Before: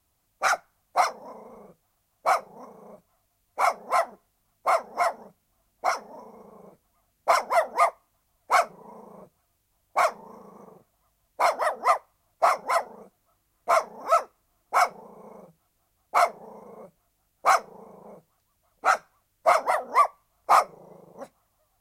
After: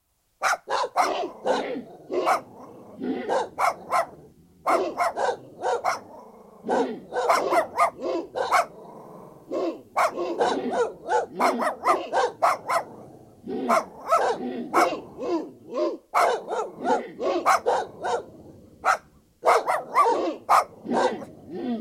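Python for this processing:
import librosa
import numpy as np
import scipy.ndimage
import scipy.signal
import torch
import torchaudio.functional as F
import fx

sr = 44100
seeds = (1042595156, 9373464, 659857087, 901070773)

y = fx.room_flutter(x, sr, wall_m=7.6, rt60_s=1.1, at=(8.91, 10.03))
y = fx.echo_pitch(y, sr, ms=89, semitones=-6, count=3, db_per_echo=-3.0)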